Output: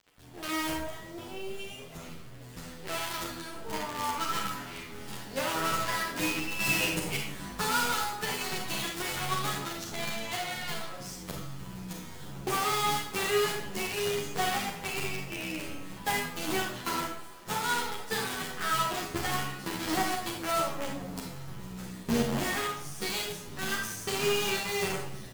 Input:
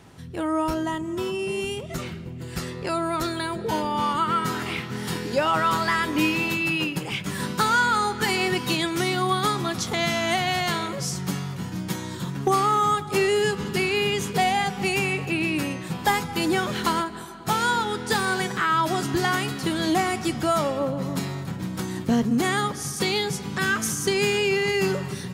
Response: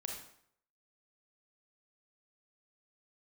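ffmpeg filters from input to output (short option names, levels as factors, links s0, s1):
-filter_complex "[0:a]asettb=1/sr,asplit=3[s0][s1][s2];[s0]atrim=end=6.594[s3];[s1]atrim=start=6.59:end=7.17,asetpts=PTS-STARTPTS,afade=t=in:d=0.004:c=qsin,afade=t=out:st=0.576:d=0.004:c=qsin,equalizer=f=125:t=o:w=1:g=6,equalizer=f=500:t=o:w=1:g=10,equalizer=f=2000:t=o:w=1:g=7,equalizer=f=8000:t=o:w=1:g=11[s4];[s2]atrim=start=7.166[s5];[s3][s4]acrossfade=d=0.004:c1=hsin:c2=qsin[s6];[s6][s5]acrossfade=d=0.004:c1=qsin:c2=hsin,acrusher=bits=4:dc=4:mix=0:aa=0.000001[s7];[1:a]atrim=start_sample=2205,asetrate=48510,aresample=44100[s8];[s7][s8]afir=irnorm=-1:irlink=0,asplit=2[s9][s10];[s10]adelay=10.1,afreqshift=-1.4[s11];[s9][s11]amix=inputs=2:normalize=1,volume=0.708"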